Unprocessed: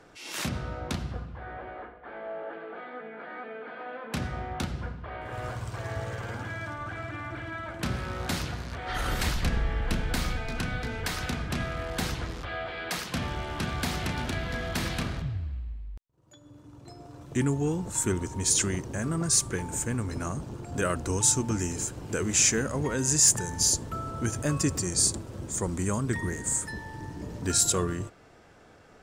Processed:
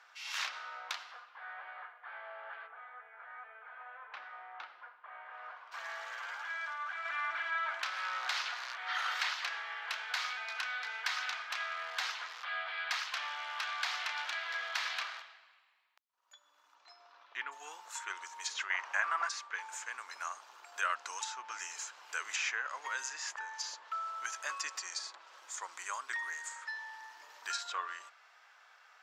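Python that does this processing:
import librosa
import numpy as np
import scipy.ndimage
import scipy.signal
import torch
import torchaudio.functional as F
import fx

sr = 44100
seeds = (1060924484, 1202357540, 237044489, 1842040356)

y = fx.spacing_loss(x, sr, db_at_10k=40, at=(2.66, 5.71), fade=0.02)
y = fx.env_flatten(y, sr, amount_pct=50, at=(7.05, 8.73))
y = fx.lowpass(y, sr, hz=fx.line((16.74, 7300.0), (17.51, 3400.0)), slope=24, at=(16.74, 17.51), fade=0.02)
y = fx.band_shelf(y, sr, hz=1300.0, db=9.5, octaves=2.5, at=(18.7, 19.29))
y = scipy.signal.sosfilt(scipy.signal.butter(4, 980.0, 'highpass', fs=sr, output='sos'), y)
y = fx.env_lowpass_down(y, sr, base_hz=2500.0, full_db=-24.0)
y = fx.peak_eq(y, sr, hz=9100.0, db=-15.0, octaves=0.59)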